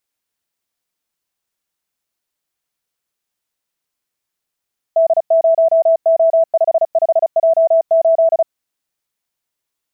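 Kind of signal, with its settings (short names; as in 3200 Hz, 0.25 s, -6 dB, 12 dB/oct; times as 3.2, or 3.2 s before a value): Morse "D0O55J8" 35 wpm 656 Hz -8 dBFS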